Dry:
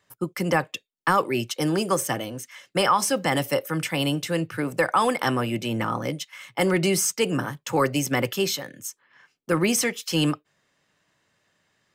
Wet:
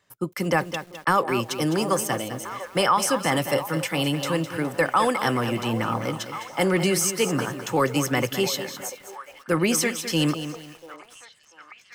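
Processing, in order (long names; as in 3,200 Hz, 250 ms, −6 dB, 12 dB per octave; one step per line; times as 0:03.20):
echo through a band-pass that steps 691 ms, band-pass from 680 Hz, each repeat 0.7 octaves, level −10.5 dB
feedback echo at a low word length 208 ms, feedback 35%, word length 7 bits, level −10 dB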